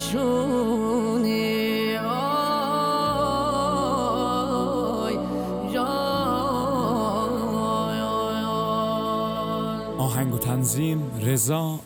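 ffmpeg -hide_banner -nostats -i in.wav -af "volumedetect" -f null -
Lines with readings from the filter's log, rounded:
mean_volume: -24.0 dB
max_volume: -12.2 dB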